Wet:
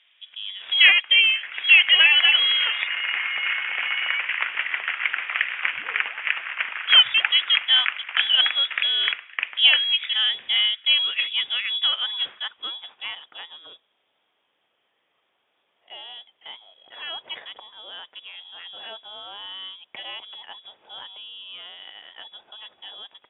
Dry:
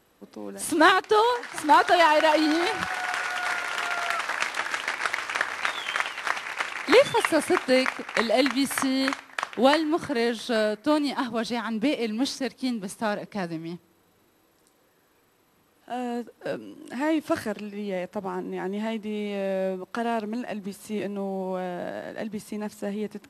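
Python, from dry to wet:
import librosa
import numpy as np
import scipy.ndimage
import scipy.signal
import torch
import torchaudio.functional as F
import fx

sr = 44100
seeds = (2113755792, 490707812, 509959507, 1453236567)

y = fx.freq_invert(x, sr, carrier_hz=3600)
y = fx.filter_sweep_bandpass(y, sr, from_hz=2400.0, to_hz=600.0, start_s=11.8, end_s=13.43, q=1.0)
y = y * librosa.db_to_amplitude(4.0)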